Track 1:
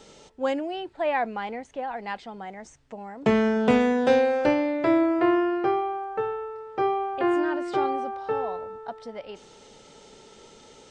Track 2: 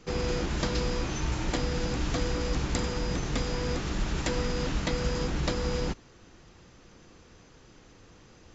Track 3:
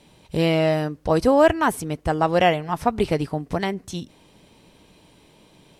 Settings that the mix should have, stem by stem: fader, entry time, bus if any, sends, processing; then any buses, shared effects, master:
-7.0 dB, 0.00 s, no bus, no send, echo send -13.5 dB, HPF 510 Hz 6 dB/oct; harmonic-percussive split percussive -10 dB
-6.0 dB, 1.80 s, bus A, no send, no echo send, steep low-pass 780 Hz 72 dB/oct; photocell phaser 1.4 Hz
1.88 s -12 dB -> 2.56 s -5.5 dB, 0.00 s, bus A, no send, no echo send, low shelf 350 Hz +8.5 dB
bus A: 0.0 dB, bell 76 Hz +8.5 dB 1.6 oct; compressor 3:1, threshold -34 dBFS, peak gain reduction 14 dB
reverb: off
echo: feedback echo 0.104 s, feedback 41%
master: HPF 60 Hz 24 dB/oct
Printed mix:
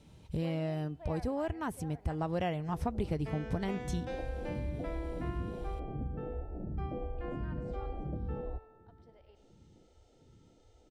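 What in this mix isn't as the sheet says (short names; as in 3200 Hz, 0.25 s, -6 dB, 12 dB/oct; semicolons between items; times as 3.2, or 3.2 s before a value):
stem 1 -7.0 dB -> -18.5 dB; stem 2: entry 1.80 s -> 2.65 s; master: missing HPF 60 Hz 24 dB/oct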